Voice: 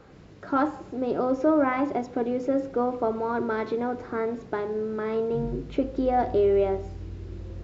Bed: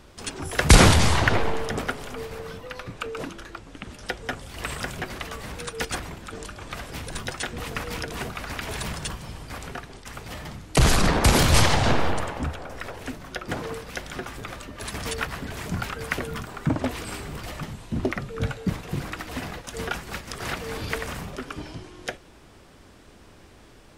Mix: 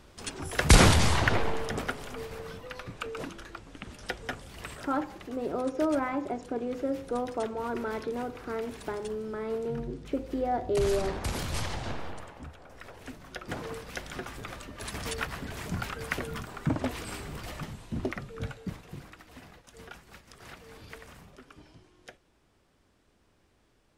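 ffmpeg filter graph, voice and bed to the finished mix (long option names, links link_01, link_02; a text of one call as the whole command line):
ffmpeg -i stem1.wav -i stem2.wav -filter_complex "[0:a]adelay=4350,volume=-6dB[link_01];[1:a]volume=6.5dB,afade=type=out:start_time=4.23:duration=0.67:silence=0.281838,afade=type=in:start_time=12.54:duration=1.35:silence=0.281838,afade=type=out:start_time=17.61:duration=1.56:silence=0.237137[link_02];[link_01][link_02]amix=inputs=2:normalize=0" out.wav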